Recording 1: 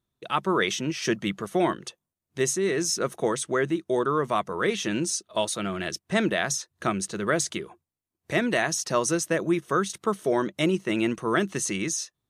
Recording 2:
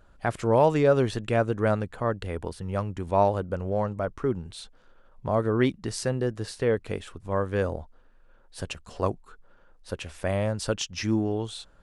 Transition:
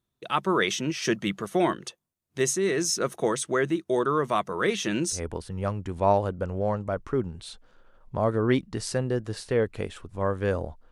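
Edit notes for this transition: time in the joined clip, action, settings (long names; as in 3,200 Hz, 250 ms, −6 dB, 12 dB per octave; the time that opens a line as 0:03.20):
recording 1
0:05.16: continue with recording 2 from 0:02.27, crossfade 0.12 s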